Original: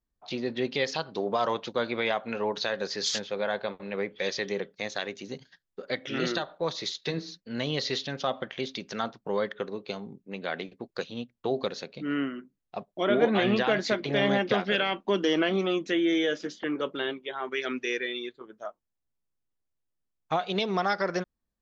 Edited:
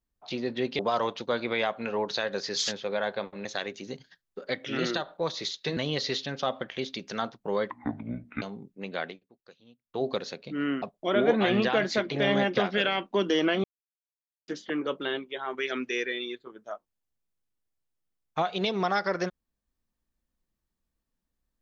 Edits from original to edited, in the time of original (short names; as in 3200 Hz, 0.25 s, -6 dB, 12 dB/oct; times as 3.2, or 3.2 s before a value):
0.79–1.26 cut
3.92–4.86 cut
7.18–7.58 cut
9.51–9.92 speed 57%
10.51–11.54 dip -20.5 dB, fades 0.19 s
12.32–12.76 cut
15.58–16.42 mute